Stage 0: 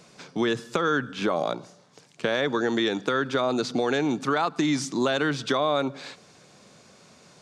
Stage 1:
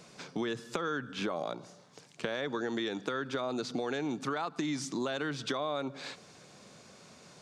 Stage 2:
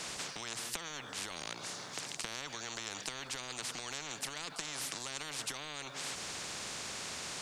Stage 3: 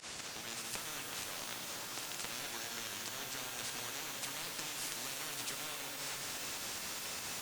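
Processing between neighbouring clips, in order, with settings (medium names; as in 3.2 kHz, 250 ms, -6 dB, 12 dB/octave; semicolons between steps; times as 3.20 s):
compression 2.5:1, threshold -33 dBFS, peak gain reduction 9 dB; trim -1.5 dB
spectrum-flattening compressor 10:1; trim -3.5 dB
volume shaper 146 bpm, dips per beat 2, -22 dB, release 67 ms; pitch-shifted reverb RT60 3.7 s, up +12 st, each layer -2 dB, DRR 0.5 dB; trim -4 dB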